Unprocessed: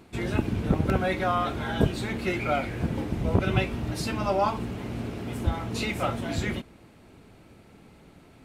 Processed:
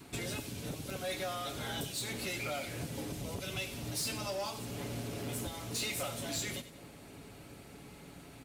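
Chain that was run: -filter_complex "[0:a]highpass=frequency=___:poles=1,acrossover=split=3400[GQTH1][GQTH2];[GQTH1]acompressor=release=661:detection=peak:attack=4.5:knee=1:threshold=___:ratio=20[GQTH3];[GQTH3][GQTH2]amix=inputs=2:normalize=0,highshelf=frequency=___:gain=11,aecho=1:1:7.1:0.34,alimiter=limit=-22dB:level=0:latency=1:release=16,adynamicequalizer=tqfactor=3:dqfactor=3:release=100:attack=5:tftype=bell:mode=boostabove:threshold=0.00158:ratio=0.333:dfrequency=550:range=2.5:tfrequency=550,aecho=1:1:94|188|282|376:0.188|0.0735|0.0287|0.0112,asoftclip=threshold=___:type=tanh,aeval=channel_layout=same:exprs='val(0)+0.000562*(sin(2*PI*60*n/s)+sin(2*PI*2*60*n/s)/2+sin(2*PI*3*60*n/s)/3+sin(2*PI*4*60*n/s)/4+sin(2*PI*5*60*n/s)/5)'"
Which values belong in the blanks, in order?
50, -34dB, 4.7k, -30.5dB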